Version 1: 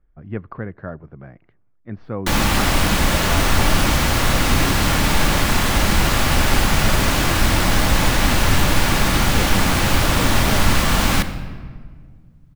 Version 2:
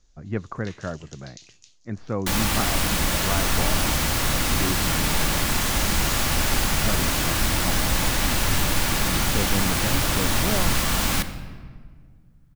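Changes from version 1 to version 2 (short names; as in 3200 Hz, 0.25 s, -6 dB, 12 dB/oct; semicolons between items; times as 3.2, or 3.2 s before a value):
first sound: unmuted; second sound -7.0 dB; master: add high shelf 4500 Hz +8 dB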